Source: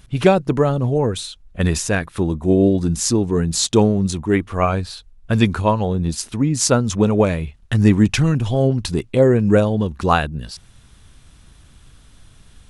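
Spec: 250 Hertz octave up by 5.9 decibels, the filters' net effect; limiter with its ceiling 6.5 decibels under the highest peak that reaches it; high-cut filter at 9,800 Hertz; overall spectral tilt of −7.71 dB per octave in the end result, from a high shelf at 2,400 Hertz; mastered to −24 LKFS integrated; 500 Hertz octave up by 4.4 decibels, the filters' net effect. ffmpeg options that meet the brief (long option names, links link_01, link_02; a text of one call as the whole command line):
ffmpeg -i in.wav -af "lowpass=9800,equalizer=frequency=250:width_type=o:gain=7,equalizer=frequency=500:width_type=o:gain=3.5,highshelf=frequency=2400:gain=-6.5,volume=-8dB,alimiter=limit=-12.5dB:level=0:latency=1" out.wav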